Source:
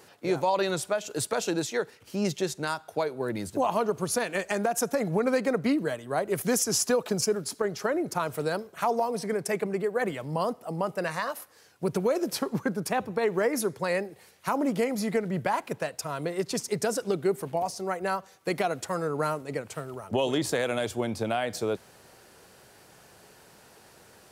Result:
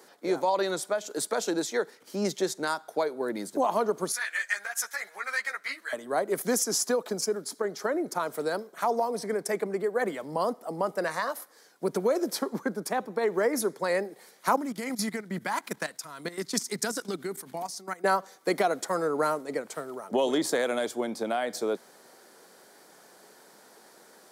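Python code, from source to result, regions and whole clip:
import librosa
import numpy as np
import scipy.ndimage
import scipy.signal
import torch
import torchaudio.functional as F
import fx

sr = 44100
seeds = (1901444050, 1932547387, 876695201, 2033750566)

y = fx.chain(x, sr, fx.highpass_res(hz=1800.0, q=2.3),
    fx.ensemble(), at=(4.12, 5.93))
y = fx.chain(y, sr, fx.level_steps(step_db=15),
    fx.peak_eq(hz=530.0, db=-14.0, octaves=1.7), at=(14.56, 18.04))
y = scipy.signal.sosfilt(scipy.signal.butter(4, 210.0, 'highpass', fs=sr, output='sos'), y)
y = fx.peak_eq(y, sr, hz=2700.0, db=-10.5, octaves=0.28)
y = fx.rider(y, sr, range_db=10, speed_s=2.0)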